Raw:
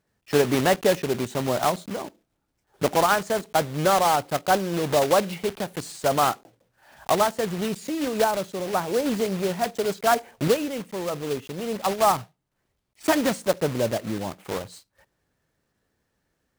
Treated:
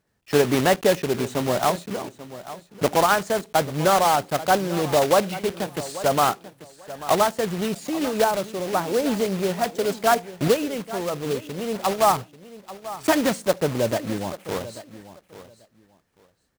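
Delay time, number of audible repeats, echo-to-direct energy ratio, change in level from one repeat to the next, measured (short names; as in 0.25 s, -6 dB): 0.839 s, 2, -15.5 dB, -14.5 dB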